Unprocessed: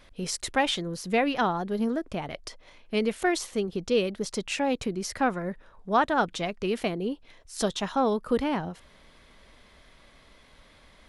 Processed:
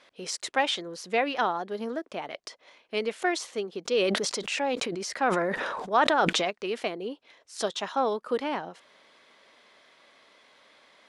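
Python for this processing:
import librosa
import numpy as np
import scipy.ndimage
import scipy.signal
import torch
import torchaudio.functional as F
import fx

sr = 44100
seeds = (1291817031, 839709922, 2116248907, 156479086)

y = fx.bandpass_edges(x, sr, low_hz=380.0, high_hz=7800.0)
y = fx.sustainer(y, sr, db_per_s=23.0, at=(3.85, 6.49), fade=0.02)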